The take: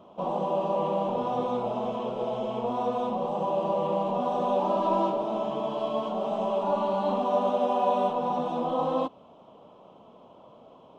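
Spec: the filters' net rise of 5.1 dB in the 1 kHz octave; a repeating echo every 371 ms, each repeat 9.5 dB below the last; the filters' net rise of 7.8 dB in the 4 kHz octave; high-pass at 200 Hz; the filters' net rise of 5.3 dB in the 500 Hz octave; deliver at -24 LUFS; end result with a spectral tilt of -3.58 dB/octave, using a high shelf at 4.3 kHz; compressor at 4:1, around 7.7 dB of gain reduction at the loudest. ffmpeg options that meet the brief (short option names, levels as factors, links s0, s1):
-af "highpass=200,equalizer=f=500:t=o:g=5,equalizer=f=1000:t=o:g=4,equalizer=f=4000:t=o:g=8,highshelf=f=4300:g=4.5,acompressor=threshold=0.0562:ratio=4,aecho=1:1:371|742|1113|1484:0.335|0.111|0.0365|0.012,volume=1.58"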